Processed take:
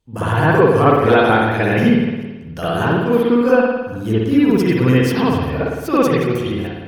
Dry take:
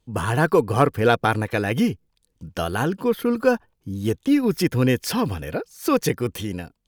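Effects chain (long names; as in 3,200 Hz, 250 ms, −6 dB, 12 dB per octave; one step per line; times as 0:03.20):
delay that plays each chunk backwards 186 ms, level −12.5 dB
spring reverb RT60 1.1 s, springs 54 ms, chirp 40 ms, DRR −10 dB
level −4 dB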